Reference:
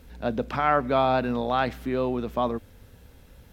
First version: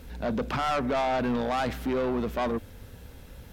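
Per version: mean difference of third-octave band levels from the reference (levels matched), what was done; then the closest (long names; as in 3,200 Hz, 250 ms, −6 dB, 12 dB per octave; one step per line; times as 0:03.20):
6.0 dB: in parallel at −2.5 dB: brickwall limiter −19 dBFS, peak gain reduction 11 dB
on the sum: soft clipping −23 dBFS, distortion −7 dB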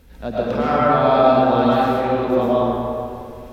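7.5 dB: dynamic equaliser 1,900 Hz, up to −6 dB, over −39 dBFS, Q 1.1
comb and all-pass reverb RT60 2.5 s, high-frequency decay 0.6×, pre-delay 75 ms, DRR −8.5 dB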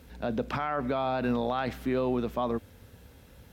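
3.5 dB: high-pass filter 59 Hz
brickwall limiter −19 dBFS, peak gain reduction 11 dB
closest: third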